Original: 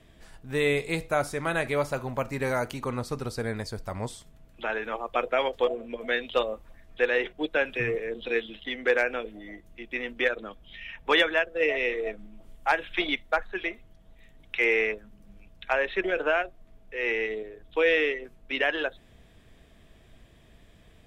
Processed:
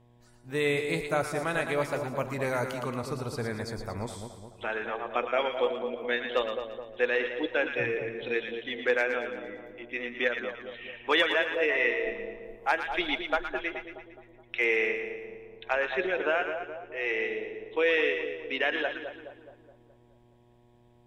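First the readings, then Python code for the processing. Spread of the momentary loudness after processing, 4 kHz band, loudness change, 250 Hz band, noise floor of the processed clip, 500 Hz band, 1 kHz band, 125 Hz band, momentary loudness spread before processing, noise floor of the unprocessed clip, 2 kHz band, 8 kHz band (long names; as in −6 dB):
13 LU, −1.5 dB, −1.5 dB, −1.5 dB, −60 dBFS, −1.5 dB, −1.5 dB, −2.0 dB, 12 LU, −56 dBFS, −1.0 dB, can't be measured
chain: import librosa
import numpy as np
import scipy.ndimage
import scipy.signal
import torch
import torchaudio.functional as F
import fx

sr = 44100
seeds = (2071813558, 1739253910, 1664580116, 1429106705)

p1 = fx.spec_box(x, sr, start_s=11.68, length_s=0.24, low_hz=850.0, high_hz=2100.0, gain_db=7)
p2 = fx.dmg_buzz(p1, sr, base_hz=120.0, harmonics=9, level_db=-46.0, tilt_db=-6, odd_only=False)
p3 = fx.noise_reduce_blind(p2, sr, reduce_db=12)
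p4 = p3 + fx.echo_split(p3, sr, split_hz=1000.0, low_ms=211, high_ms=114, feedback_pct=52, wet_db=-7.0, dry=0)
y = F.gain(torch.from_numpy(p4), -2.5).numpy()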